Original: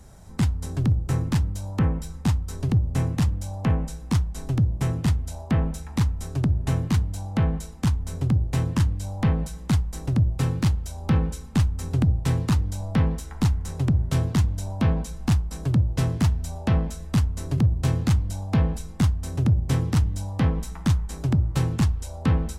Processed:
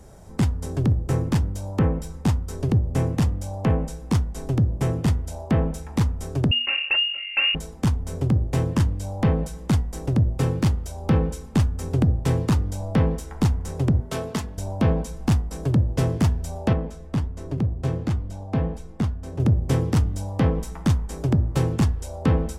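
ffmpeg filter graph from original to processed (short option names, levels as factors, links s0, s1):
-filter_complex "[0:a]asettb=1/sr,asplit=3[s0][s1][s2];[s0]atrim=end=6.514[s3];[s1]atrim=start=6.51:end=7.55,asetpts=PTS-STARTPTS,afade=t=in:d=0.004:c=qsin,afade=t=out:st=1.036:d=0.004:c=qsin,aecho=1:1:3.9:0.46,atrim=end_sample=45864,lowpass=f=2500:t=q:w=0.5098,lowpass=f=2500:t=q:w=0.6013,lowpass=f=2500:t=q:w=0.9,lowpass=f=2500:t=q:w=2.563,afreqshift=-2900[s4];[s2]atrim=start=7.546[s5];[s3][s4]acrossfade=d=0.004:c1=hsin:c2=qsin[s6];[s6][s5]acrossfade=d=0.004:c1=qsin:c2=hsin,asettb=1/sr,asplit=3[s7][s8][s9];[s7]atrim=end=14.004[s10];[s8]atrim=start=14:end=14.58,asetpts=PTS-STARTPTS,afade=t=in:d=0.004:c=qsin,afade=t=out:st=0.576:d=0.004:c=qsin,lowshelf=f=280:g=-11.5,aecho=1:1:4.6:0.46,atrim=end_sample=25578[s11];[s9]atrim=start=14.576[s12];[s10][s11]acrossfade=d=0.004:c1=hsin:c2=qsin[s13];[s13][s12]acrossfade=d=0.004:c1=qsin:c2=hsin,asettb=1/sr,asplit=3[s14][s15][s16];[s14]atrim=end=16.734[s17];[s15]atrim=start=16.73:end=19.4,asetpts=PTS-STARTPTS,afade=t=in:d=0.004:c=qsin,afade=t=out:st=2.666:d=0.004:c=qsin,aemphasis=mode=reproduction:type=cd,flanger=delay=2.7:depth=5.1:regen=82:speed=1.4:shape=sinusoidal[s18];[s16]atrim=start=19.396[s19];[s17][s18]acrossfade=d=0.004:c1=hsin:c2=qsin[s20];[s20][s19]acrossfade=d=0.004:c1=qsin:c2=hsin,equalizer=f=460:t=o:w=1.4:g=8,bandreject=f=4000:w=21,bandreject=f=242.1:t=h:w=4,bandreject=f=484.2:t=h:w=4,bandreject=f=726.3:t=h:w=4,bandreject=f=968.4:t=h:w=4,bandreject=f=1210.5:t=h:w=4,bandreject=f=1452.6:t=h:w=4,bandreject=f=1694.7:t=h:w=4,bandreject=f=1936.8:t=h:w=4"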